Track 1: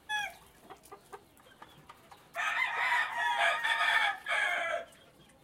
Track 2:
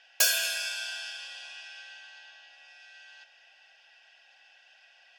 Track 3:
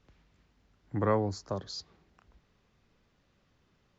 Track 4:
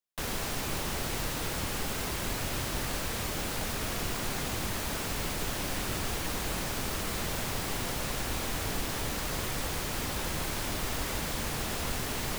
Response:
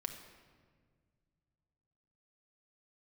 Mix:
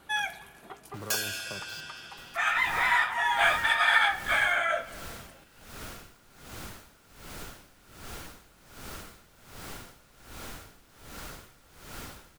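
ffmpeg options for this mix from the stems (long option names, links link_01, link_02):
-filter_complex "[0:a]volume=0.5dB,asplit=2[link_01][link_02];[link_02]volume=-3dB[link_03];[1:a]adelay=900,volume=-7dB[link_04];[2:a]acompressor=threshold=-32dB:ratio=6,acrusher=bits=6:mix=0:aa=0.000001,volume=-9.5dB,asplit=2[link_05][link_06];[link_06]volume=-5.5dB[link_07];[3:a]aeval=exprs='val(0)*pow(10,-19*(0.5-0.5*cos(2*PI*1.3*n/s))/20)':channel_layout=same,adelay=2000,volume=-8dB[link_08];[4:a]atrim=start_sample=2205[link_09];[link_03][link_07]amix=inputs=2:normalize=0[link_10];[link_10][link_09]afir=irnorm=-1:irlink=0[link_11];[link_01][link_04][link_05][link_08][link_11]amix=inputs=5:normalize=0,equalizer=frequency=1400:width=7.8:gain=8"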